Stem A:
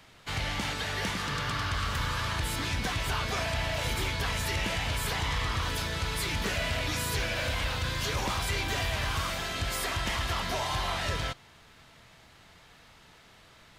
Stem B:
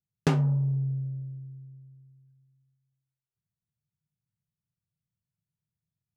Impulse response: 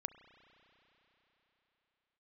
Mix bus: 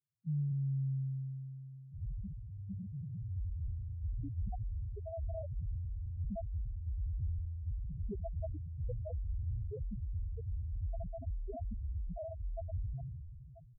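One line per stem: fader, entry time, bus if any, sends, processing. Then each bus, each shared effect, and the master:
+1.5 dB, 1.65 s, send -20 dB, dry
+1.5 dB, 0.00 s, no send, soft clip -28 dBFS, distortion -9 dB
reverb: on, RT60 4.1 s, pre-delay 32 ms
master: Chebyshev low-pass 690 Hz, order 6; loudest bins only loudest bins 1; sustainer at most 25 dB/s

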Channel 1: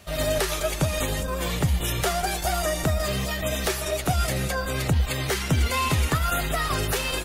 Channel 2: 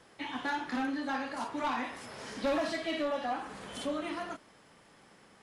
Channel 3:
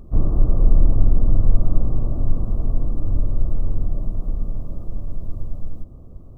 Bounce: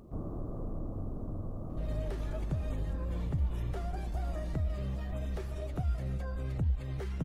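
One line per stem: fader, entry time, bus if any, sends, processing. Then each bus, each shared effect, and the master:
-11.5 dB, 1.70 s, no send, tilt -4 dB/oct
-15.0 dB, 1.80 s, no send, dry
-2.5 dB, 0.00 s, no send, HPF 200 Hz 6 dB/oct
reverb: off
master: compressor 1.5:1, threshold -47 dBFS, peak gain reduction 11.5 dB

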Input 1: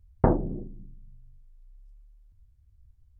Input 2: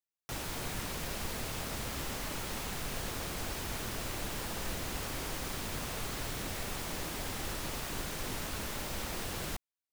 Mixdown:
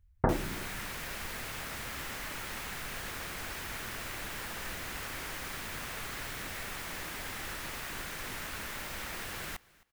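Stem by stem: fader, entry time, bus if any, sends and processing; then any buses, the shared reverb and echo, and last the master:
-7.5 dB, 0.00 s, no send, no echo send, dry
-6.0 dB, 0.00 s, no send, echo send -23.5 dB, high shelf 8400 Hz +5.5 dB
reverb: off
echo: feedback echo 0.265 s, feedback 17%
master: bell 1800 Hz +10 dB 1.6 oct

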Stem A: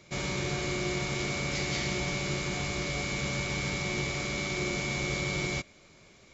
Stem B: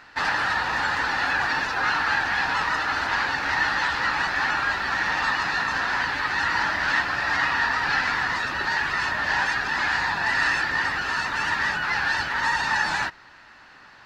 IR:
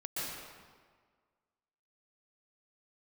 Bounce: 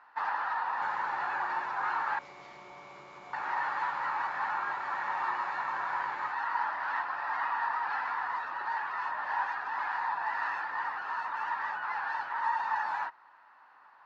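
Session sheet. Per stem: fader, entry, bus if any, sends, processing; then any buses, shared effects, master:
+2.0 dB, 0.70 s, no send, compressor, threshold -34 dBFS, peak gain reduction 7 dB
-2.0 dB, 0.00 s, muted 2.19–3.33, no send, dry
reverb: off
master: band-pass 970 Hz, Q 3

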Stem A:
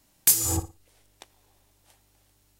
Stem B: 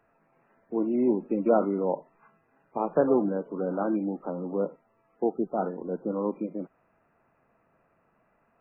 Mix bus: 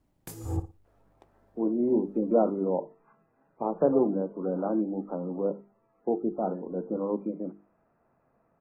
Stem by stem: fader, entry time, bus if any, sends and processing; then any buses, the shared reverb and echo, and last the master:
-9.5 dB, 0.00 s, no send, tilt shelf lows +8.5 dB, about 1300 Hz; bit-crush 11-bit
+1.0 dB, 0.85 s, no send, treble ducked by the level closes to 1200 Hz, closed at -24 dBFS; high shelf 2100 Hz -9 dB; notches 50/100/150/200/250/300/350/400/450 Hz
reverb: off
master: high shelf 2100 Hz -10.5 dB

